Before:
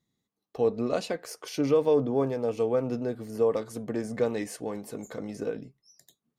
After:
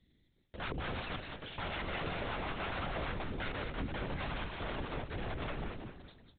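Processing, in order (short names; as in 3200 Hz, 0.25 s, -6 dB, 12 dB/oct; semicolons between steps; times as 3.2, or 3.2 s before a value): HPF 110 Hz 24 dB/oct; band shelf 830 Hz -10 dB; reverse; compressor 5:1, threshold -32 dBFS, peak gain reduction 10 dB; reverse; wrapped overs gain 33.5 dB; limiter -44.5 dBFS, peak gain reduction 11 dB; on a send: feedback echo 0.192 s, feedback 40%, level -5 dB; on the sum: LPC vocoder at 8 kHz whisper; gain +11 dB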